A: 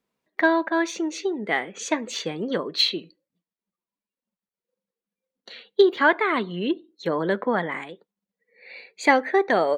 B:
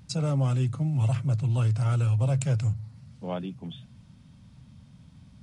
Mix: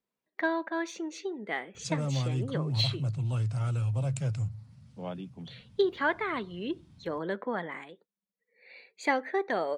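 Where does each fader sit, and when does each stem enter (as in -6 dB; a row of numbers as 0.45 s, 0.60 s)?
-9.5 dB, -5.5 dB; 0.00 s, 1.75 s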